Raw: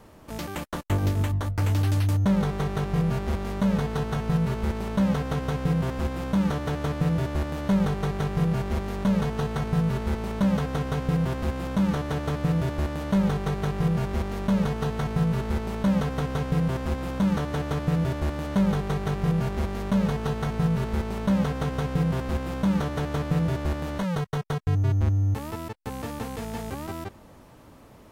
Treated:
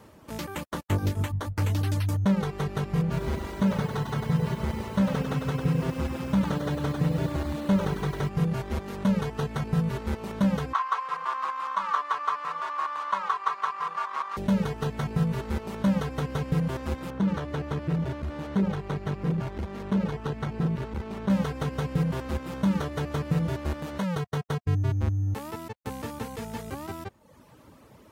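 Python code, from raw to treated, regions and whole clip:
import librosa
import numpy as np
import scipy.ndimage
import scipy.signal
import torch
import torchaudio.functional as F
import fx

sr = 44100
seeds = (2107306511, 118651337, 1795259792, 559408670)

y = fx.chain(x, sr, fx.high_shelf(hz=10000.0, db=-7.0),
    fx.echo_crushed(ms=99, feedback_pct=55, bits=8, wet_db=-3.5), at=(3.02, 8.29))
y = fx.chain(y, sr, fx.highpass_res(hz=1100.0, q=10.0),
    fx.air_absorb(metres=63.0), at=(10.73, 14.37))
y = fx.chain(y, sr, fx.high_shelf(hz=6400.0, db=-11.5),
    fx.transformer_sat(knee_hz=190.0), at=(17.1, 21.3))
y = scipy.signal.sosfilt(scipy.signal.butter(2, 64.0, 'highpass', fs=sr, output='sos'), y)
y = fx.dereverb_blind(y, sr, rt60_s=0.8)
y = fx.notch(y, sr, hz=710.0, q=12.0)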